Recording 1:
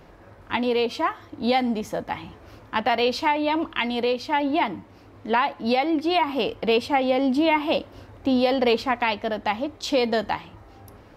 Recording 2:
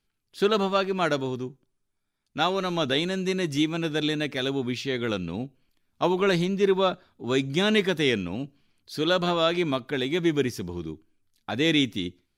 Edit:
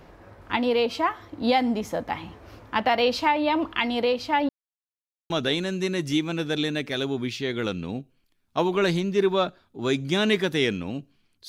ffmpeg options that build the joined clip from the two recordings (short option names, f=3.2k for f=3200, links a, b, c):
-filter_complex "[0:a]apad=whole_dur=11.48,atrim=end=11.48,asplit=2[a][b];[a]atrim=end=4.49,asetpts=PTS-STARTPTS,afade=t=out:st=4.486:d=0.004:c=hsin[c];[b]atrim=start=4.49:end=5.3,asetpts=PTS-STARTPTS,volume=0[d];[1:a]atrim=start=2.75:end=8.93,asetpts=PTS-STARTPTS,afade=t=in:d=0.004:c=hsin[e];[c][d][e]concat=n=3:v=0:a=1"